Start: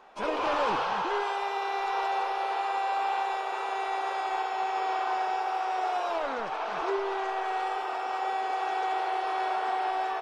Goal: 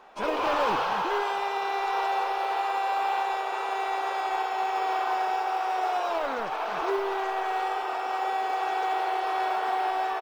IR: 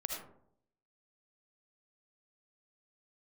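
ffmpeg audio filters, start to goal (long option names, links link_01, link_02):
-af "aecho=1:1:645|1290:0.0708|0.0127,acrusher=bits=9:mode=log:mix=0:aa=0.000001,volume=2dB"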